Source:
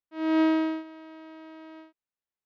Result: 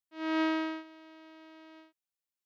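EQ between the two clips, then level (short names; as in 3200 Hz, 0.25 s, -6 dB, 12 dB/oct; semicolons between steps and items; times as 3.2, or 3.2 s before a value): high shelf 2400 Hz +11 dB; dynamic EQ 1400 Hz, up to +5 dB, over -39 dBFS, Q 0.83; -8.5 dB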